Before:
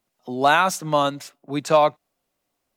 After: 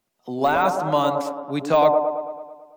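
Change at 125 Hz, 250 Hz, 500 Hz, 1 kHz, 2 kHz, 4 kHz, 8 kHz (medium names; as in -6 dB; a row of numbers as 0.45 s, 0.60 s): 0.0 dB, +1.5 dB, +2.0 dB, 0.0 dB, -5.5 dB, -5.5 dB, -10.0 dB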